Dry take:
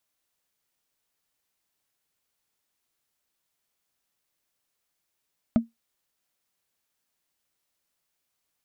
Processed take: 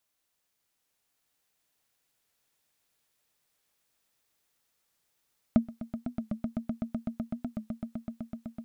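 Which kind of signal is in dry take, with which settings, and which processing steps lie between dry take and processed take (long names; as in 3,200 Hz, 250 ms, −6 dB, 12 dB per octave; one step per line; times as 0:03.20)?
struck wood, lowest mode 230 Hz, decay 0.16 s, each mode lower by 9 dB, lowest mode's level −12 dB
on a send: echo that builds up and dies away 126 ms, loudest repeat 8, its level −10.5 dB
on the sum: wow of a warped record 45 rpm, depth 100 cents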